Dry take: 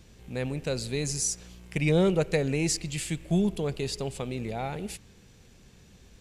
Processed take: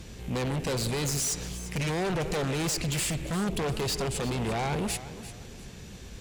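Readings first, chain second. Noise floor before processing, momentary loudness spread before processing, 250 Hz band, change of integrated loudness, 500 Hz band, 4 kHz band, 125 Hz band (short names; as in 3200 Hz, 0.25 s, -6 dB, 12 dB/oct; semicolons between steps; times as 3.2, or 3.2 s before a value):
-55 dBFS, 13 LU, -2.5 dB, -0.5 dB, -2.5 dB, +3.0 dB, -0.5 dB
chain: limiter -24 dBFS, peak gain reduction 11.5 dB; added harmonics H 5 -7 dB, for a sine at -24 dBFS; warbling echo 0.348 s, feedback 32%, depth 103 cents, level -14 dB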